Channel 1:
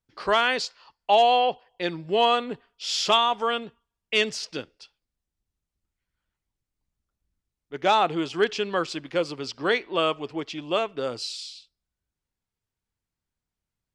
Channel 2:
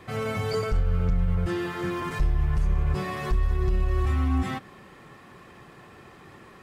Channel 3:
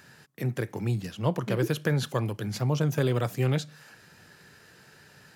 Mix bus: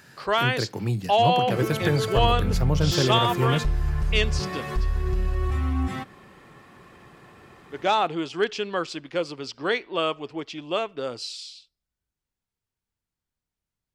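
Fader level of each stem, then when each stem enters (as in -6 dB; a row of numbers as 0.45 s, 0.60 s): -1.5 dB, -1.0 dB, +2.0 dB; 0.00 s, 1.45 s, 0.00 s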